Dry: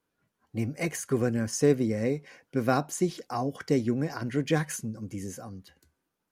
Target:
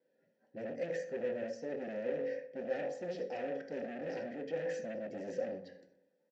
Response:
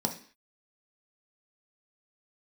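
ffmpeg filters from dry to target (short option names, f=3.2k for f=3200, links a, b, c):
-filter_complex "[0:a]bandreject=f=46.1:t=h:w=4,bandreject=f=92.2:t=h:w=4,bandreject=f=138.3:t=h:w=4,bandreject=f=184.4:t=h:w=4,bandreject=f=230.5:t=h:w=4,bandreject=f=276.6:t=h:w=4,bandreject=f=322.7:t=h:w=4,bandreject=f=368.8:t=h:w=4,bandreject=f=414.9:t=h:w=4,bandreject=f=461:t=h:w=4,bandreject=f=507.1:t=h:w=4,bandreject=f=553.2:t=h:w=4,bandreject=f=599.3:t=h:w=4,bandreject=f=645.4:t=h:w=4,bandreject=f=691.5:t=h:w=4,bandreject=f=737.6:t=h:w=4,bandreject=f=783.7:t=h:w=4,bandreject=f=829.8:t=h:w=4,bandreject=f=875.9:t=h:w=4,bandreject=f=922:t=h:w=4,bandreject=f=968.1:t=h:w=4,bandreject=f=1.0142k:t=h:w=4,bandreject=f=1.0603k:t=h:w=4,bandreject=f=1.1064k:t=h:w=4,bandreject=f=1.1525k:t=h:w=4,bandreject=f=1.1986k:t=h:w=4,bandreject=f=1.2447k:t=h:w=4,areverse,acompressor=threshold=-34dB:ratio=12,areverse[a];[1:a]atrim=start_sample=2205,afade=t=out:st=0.15:d=0.01,atrim=end_sample=7056[b];[a][b]afir=irnorm=-1:irlink=0,aresample=16000,asoftclip=type=hard:threshold=-31dB,aresample=44100,asplit=3[c][d][e];[c]bandpass=f=530:t=q:w=8,volume=0dB[f];[d]bandpass=f=1.84k:t=q:w=8,volume=-6dB[g];[e]bandpass=f=2.48k:t=q:w=8,volume=-9dB[h];[f][g][h]amix=inputs=3:normalize=0,asplit=2[i][j];[j]adelay=124,lowpass=f=2.4k:p=1,volume=-16dB,asplit=2[k][l];[l]adelay=124,lowpass=f=2.4k:p=1,volume=0.41,asplit=2[m][n];[n]adelay=124,lowpass=f=2.4k:p=1,volume=0.41,asplit=2[o][p];[p]adelay=124,lowpass=f=2.4k:p=1,volume=0.41[q];[i][k][m][o][q]amix=inputs=5:normalize=0,volume=8dB"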